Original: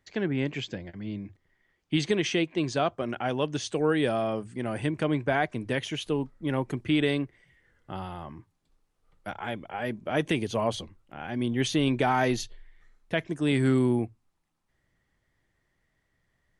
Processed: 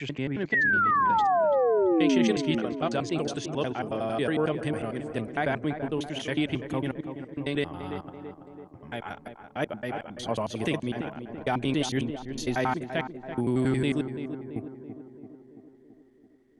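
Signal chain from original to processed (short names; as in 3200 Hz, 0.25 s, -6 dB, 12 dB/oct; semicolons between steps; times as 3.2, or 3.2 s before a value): slices in reverse order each 91 ms, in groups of 7; painted sound fall, 0.52–2.32, 210–2000 Hz -21 dBFS; tape echo 0.335 s, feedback 70%, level -7.5 dB, low-pass 1300 Hz; gain -2 dB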